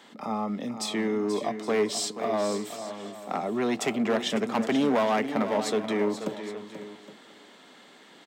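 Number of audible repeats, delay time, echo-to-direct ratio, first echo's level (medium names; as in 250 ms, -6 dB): 5, 483 ms, -8.5 dB, -10.5 dB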